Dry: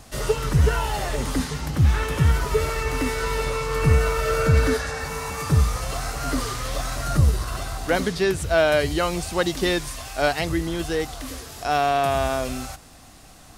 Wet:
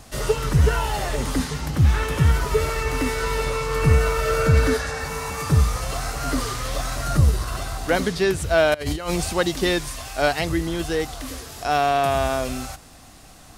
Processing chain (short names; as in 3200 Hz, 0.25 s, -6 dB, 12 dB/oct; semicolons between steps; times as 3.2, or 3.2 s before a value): 8.74–9.33 negative-ratio compressor -26 dBFS, ratio -0.5; gain +1 dB